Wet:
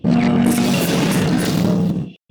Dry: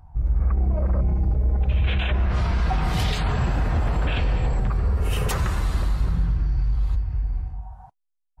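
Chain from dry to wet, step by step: Chebyshev shaper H 3 -14 dB, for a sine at -13 dBFS; wide varispeed 3.65×; trim +8 dB

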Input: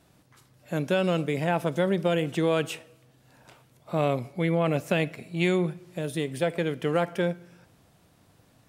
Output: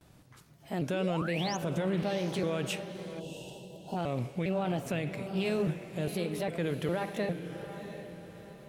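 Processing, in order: pitch shift switched off and on +2.5 st, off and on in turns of 405 ms; gate with hold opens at -54 dBFS; bass shelf 110 Hz +8 dB; peak limiter -22.5 dBFS, peak gain reduction 11.5 dB; painted sound rise, 0.93–1.57 s, 280–6800 Hz -40 dBFS; echo that smears into a reverb 708 ms, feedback 41%, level -9.5 dB; time-frequency box 3.20–3.96 s, 1–2.6 kHz -20 dB; loudspeaker Doppler distortion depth 0.12 ms

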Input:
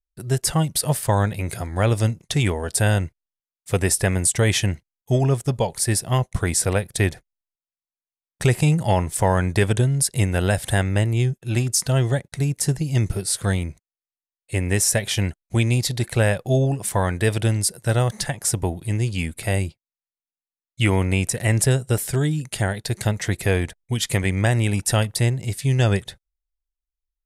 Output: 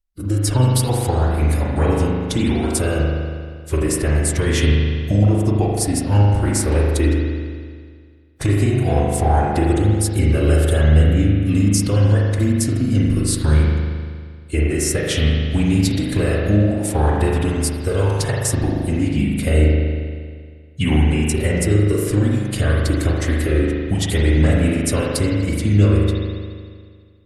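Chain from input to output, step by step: in parallel at -2 dB: level held to a coarse grid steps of 12 dB; on the sum: formant-preserving pitch shift -4 st; bass shelf 350 Hz +5 dB; compression 4:1, threshold -16 dBFS, peak gain reduction 8.5 dB; spring tank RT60 1.9 s, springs 39 ms, chirp 45 ms, DRR -3 dB; trim -1.5 dB

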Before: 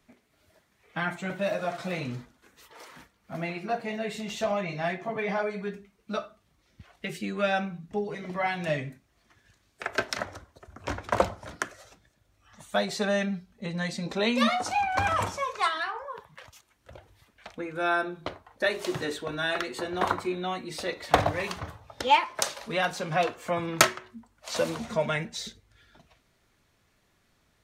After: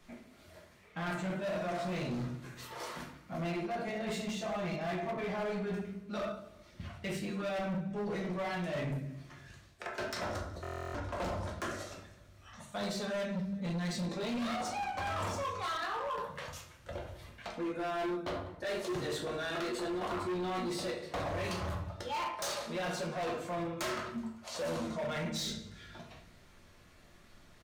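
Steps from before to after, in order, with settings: reverse; compression 5:1, threshold -39 dBFS, peak gain reduction 23 dB; reverse; treble shelf 11 kHz -5 dB; reverberation RT60 0.60 s, pre-delay 6 ms, DRR -1.5 dB; dynamic bell 2.1 kHz, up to -4 dB, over -54 dBFS, Q 1; feedback delay 186 ms, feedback 41%, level -22 dB; hard clipper -36.5 dBFS, distortion -10 dB; buffer glitch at 10.62 s, samples 1024, times 13; trim +4 dB

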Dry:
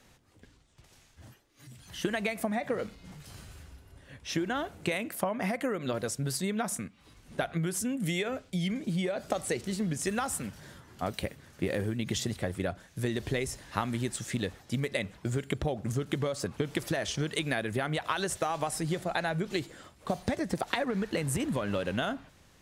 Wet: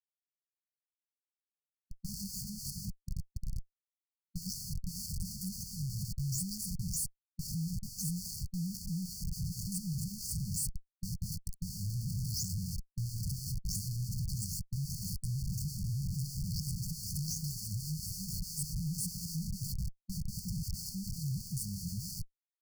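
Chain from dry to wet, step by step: delay that grows with frequency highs late, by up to 287 ms; Schmitt trigger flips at -40.5 dBFS; brick-wall FIR band-stop 200–4300 Hz; trim +1.5 dB

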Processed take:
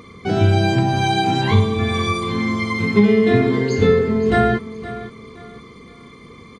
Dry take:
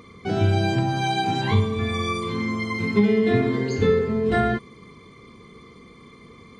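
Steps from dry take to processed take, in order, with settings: feedback delay 518 ms, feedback 29%, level -15 dB; trim +5 dB

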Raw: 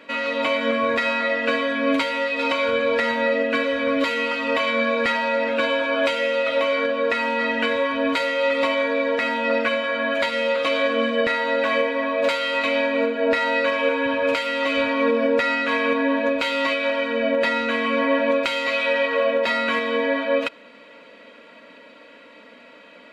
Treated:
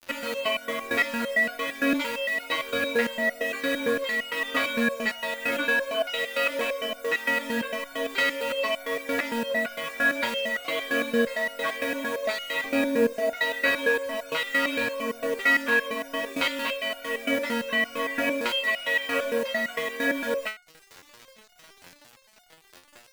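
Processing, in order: 12.64–13.13 s: tilt EQ -3.5 dB/octave; in parallel at +2 dB: compression 5:1, threshold -30 dBFS, peak gain reduction 15 dB; on the sum: crossover distortion -40 dBFS; bit crusher 6-bit; resonator arpeggio 8.8 Hz 88–720 Hz; trim +6.5 dB

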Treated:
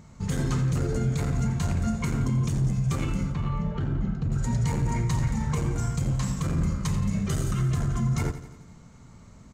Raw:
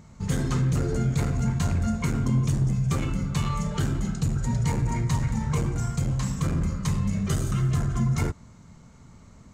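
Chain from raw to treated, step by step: peak limiter -18 dBFS, peak gain reduction 4 dB; 3.32–4.32 s: tape spacing loss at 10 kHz 35 dB; feedback delay 86 ms, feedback 58%, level -13 dB

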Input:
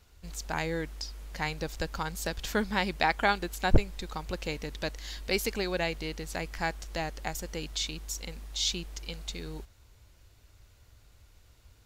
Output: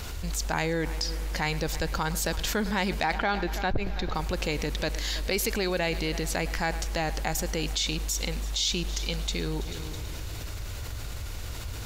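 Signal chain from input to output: saturation -14 dBFS, distortion -14 dB; 3.13–4.15 s: boxcar filter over 5 samples; multi-head delay 109 ms, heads first and third, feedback 53%, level -23 dB; level flattener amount 70%; trim -5.5 dB

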